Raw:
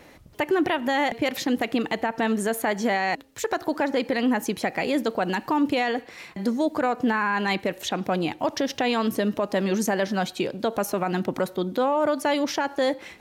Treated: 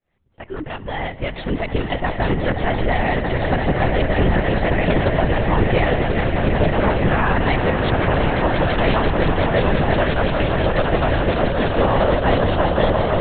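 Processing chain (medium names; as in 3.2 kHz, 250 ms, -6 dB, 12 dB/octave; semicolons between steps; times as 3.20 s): fade-in on the opening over 1.90 s; echo with a slow build-up 172 ms, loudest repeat 8, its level -9 dB; LPC vocoder at 8 kHz whisper; trim +3.5 dB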